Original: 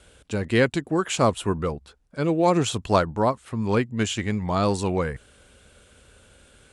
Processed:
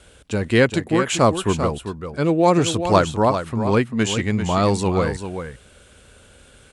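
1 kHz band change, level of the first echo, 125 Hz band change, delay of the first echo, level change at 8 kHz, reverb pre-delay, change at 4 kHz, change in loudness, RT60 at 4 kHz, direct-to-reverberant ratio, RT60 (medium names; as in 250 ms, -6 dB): +4.5 dB, -9.0 dB, +4.5 dB, 393 ms, +4.5 dB, no reverb, +4.5 dB, +4.0 dB, no reverb, no reverb, no reverb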